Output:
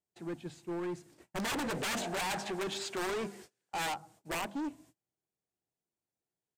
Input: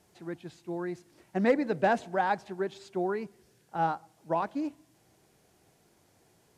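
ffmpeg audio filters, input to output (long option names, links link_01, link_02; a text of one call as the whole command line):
ffmpeg -i in.wav -filter_complex "[0:a]bandreject=frequency=50:width_type=h:width=6,bandreject=frequency=100:width_type=h:width=6,bandreject=frequency=150:width_type=h:width=6,bandreject=frequency=200:width_type=h:width=6,bandreject=frequency=250:width_type=h:width=6,agate=range=-31dB:threshold=-58dB:ratio=16:detection=peak,equalizer=frequency=200:width=0.61:gain=2,aeval=exprs='(mod(12.6*val(0)+1,2)-1)/12.6':channel_layout=same,asettb=1/sr,asplit=3[link_01][link_02][link_03];[link_01]atrim=end=1.374[link_04];[link_02]atrim=start=1.37:end=3.94,asetpts=PTS-STARTPTS,afade=type=in:duration=0.004:curve=qsin,afade=type=out:start_time=2.566:duration=0.004:curve=qsin,asplit=2[link_05][link_06];[link_06]highpass=frequency=720:poles=1,volume=20dB,asoftclip=type=tanh:threshold=-22dB[link_07];[link_05][link_07]amix=inputs=2:normalize=0,lowpass=frequency=6000:poles=1,volume=-6dB[link_08];[link_03]atrim=start=3.936[link_09];[link_04][link_08]acrossfade=duration=0.004:curve1=hsin:curve2=qsin[link_10];[link_10][link_09]acrossfade=duration=0.004:curve1=qsin:curve2=hsin,asoftclip=type=hard:threshold=-33.5dB,aexciter=amount=1.8:drive=1.1:freq=7100,aresample=32000,aresample=44100" out.wav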